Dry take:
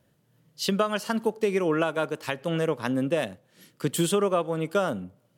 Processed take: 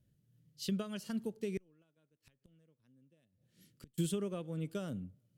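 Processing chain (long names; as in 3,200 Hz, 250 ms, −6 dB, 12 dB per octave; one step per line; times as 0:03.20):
0:01.57–0:03.98: gate with flip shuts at −28 dBFS, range −31 dB
guitar amp tone stack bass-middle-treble 10-0-1
level +8.5 dB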